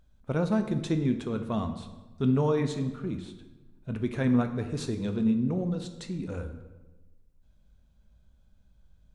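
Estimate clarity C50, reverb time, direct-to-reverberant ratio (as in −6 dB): 10.0 dB, 1.2 s, 7.0 dB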